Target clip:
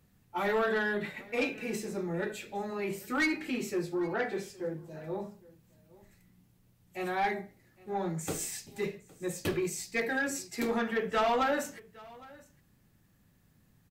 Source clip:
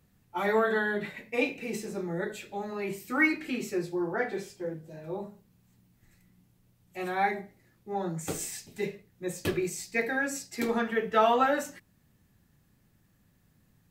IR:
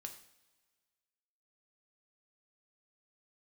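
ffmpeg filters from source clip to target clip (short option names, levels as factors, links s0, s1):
-filter_complex "[0:a]asoftclip=type=tanh:threshold=0.0708,asplit=2[s0][s1];[s1]aecho=0:1:812:0.075[s2];[s0][s2]amix=inputs=2:normalize=0"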